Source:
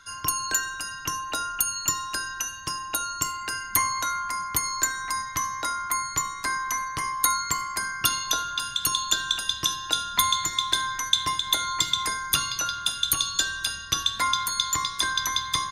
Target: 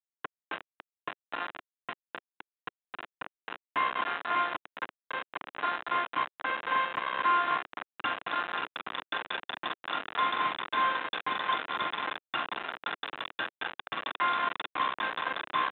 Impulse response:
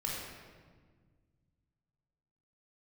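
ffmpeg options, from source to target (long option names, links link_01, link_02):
-af "aecho=1:1:45|104|180|221|226|588:0.376|0.106|0.158|0.422|0.237|0.398,aresample=8000,acrusher=bits=3:mix=0:aa=0.000001,aresample=44100,highpass=330,equalizer=frequency=390:width_type=q:width=4:gain=-4,equalizer=frequency=560:width_type=q:width=4:gain=-4,equalizer=frequency=2200:width_type=q:width=4:gain=-6,lowpass=frequency=2500:width=0.5412,lowpass=frequency=2500:width=1.3066,volume=-2.5dB"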